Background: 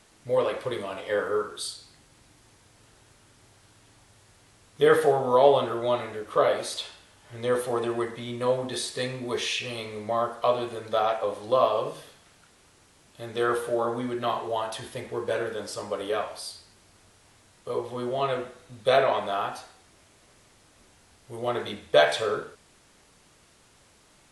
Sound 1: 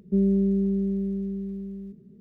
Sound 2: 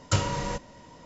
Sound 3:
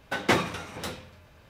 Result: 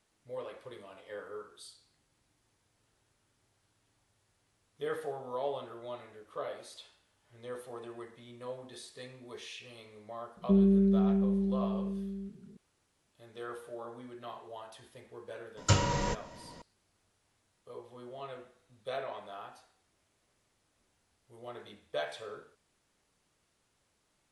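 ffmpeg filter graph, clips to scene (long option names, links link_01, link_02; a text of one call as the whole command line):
ffmpeg -i bed.wav -i cue0.wav -i cue1.wav -filter_complex "[0:a]volume=-17dB[link_01];[1:a]aresample=8000,aresample=44100,atrim=end=2.2,asetpts=PTS-STARTPTS,volume=-2.5dB,afade=type=in:duration=0.004:curve=hsin,afade=type=out:start_time=2.196:duration=0.004:curve=hsin,adelay=10370[link_02];[2:a]atrim=end=1.05,asetpts=PTS-STARTPTS,volume=-1dB,afade=type=in:duration=0.004:curve=hsin,afade=type=out:start_time=1.046:duration=0.004:curve=hsin,adelay=15570[link_03];[link_01][link_02][link_03]amix=inputs=3:normalize=0" out.wav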